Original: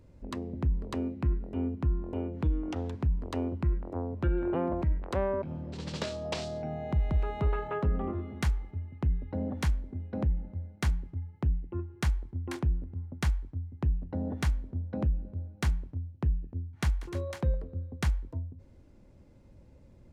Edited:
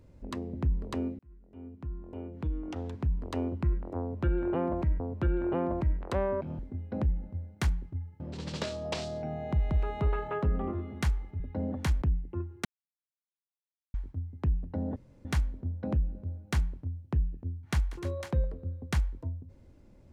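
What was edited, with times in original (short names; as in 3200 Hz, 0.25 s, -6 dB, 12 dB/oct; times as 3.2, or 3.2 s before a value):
1.19–3.38 fade in
4.01–5 loop, 2 plays
8.8–9.18 cut
9.8–11.41 move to 5.6
12.04–13.33 mute
14.35 insert room tone 0.29 s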